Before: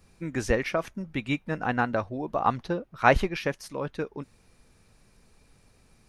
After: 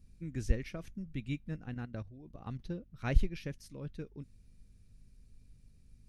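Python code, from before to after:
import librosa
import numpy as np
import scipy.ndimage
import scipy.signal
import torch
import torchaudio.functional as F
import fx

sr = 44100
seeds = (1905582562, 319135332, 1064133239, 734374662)

y = fx.tone_stack(x, sr, knobs='10-0-1')
y = fx.level_steps(y, sr, step_db=12, at=(1.56, 2.6))
y = fx.add_hum(y, sr, base_hz=50, snr_db=29)
y = y * 10.0 ** (9.0 / 20.0)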